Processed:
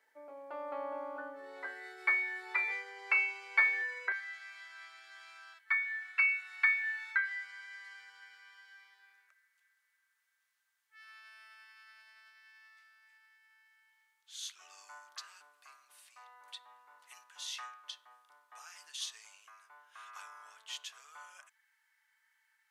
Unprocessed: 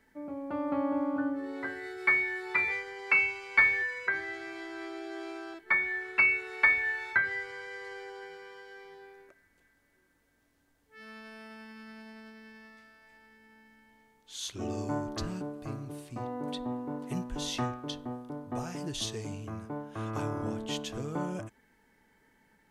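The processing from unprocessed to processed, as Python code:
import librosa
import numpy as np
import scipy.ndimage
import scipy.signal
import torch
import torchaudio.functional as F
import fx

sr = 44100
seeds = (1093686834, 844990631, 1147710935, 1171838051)

y = fx.highpass(x, sr, hz=fx.steps((0.0, 490.0), (4.12, 1200.0)), slope=24)
y = y * librosa.db_to_amplitude(-4.5)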